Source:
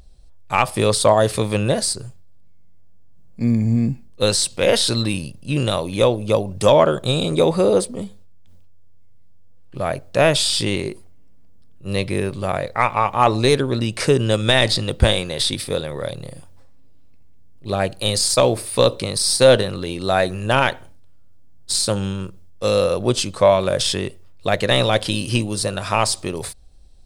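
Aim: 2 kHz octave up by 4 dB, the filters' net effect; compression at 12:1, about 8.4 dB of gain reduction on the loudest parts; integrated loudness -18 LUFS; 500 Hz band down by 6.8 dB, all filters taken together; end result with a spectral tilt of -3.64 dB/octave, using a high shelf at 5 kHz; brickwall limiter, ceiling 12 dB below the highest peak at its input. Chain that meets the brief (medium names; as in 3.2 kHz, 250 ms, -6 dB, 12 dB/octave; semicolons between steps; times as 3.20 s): peaking EQ 500 Hz -8.5 dB; peaking EQ 2 kHz +4.5 dB; treble shelf 5 kHz +6 dB; compression 12:1, threshold -18 dBFS; trim +9.5 dB; peak limiter -7 dBFS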